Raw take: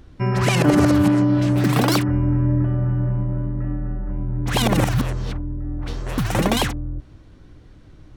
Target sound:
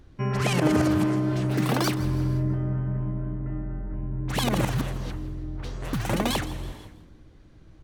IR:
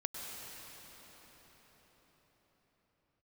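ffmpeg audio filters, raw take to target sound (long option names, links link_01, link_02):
-filter_complex "[0:a]asplit=5[link_01][link_02][link_03][link_04][link_05];[link_02]adelay=170,afreqshift=59,volume=-17.5dB[link_06];[link_03]adelay=340,afreqshift=118,volume=-24.8dB[link_07];[link_04]adelay=510,afreqshift=177,volume=-32.2dB[link_08];[link_05]adelay=680,afreqshift=236,volume=-39.5dB[link_09];[link_01][link_06][link_07][link_08][link_09]amix=inputs=5:normalize=0,asetrate=45938,aresample=44100,asplit=2[link_10][link_11];[1:a]atrim=start_sample=2205,afade=type=out:start_time=0.44:duration=0.01,atrim=end_sample=19845,asetrate=33075,aresample=44100[link_12];[link_11][link_12]afir=irnorm=-1:irlink=0,volume=-13.5dB[link_13];[link_10][link_13]amix=inputs=2:normalize=0,volume=-7.5dB"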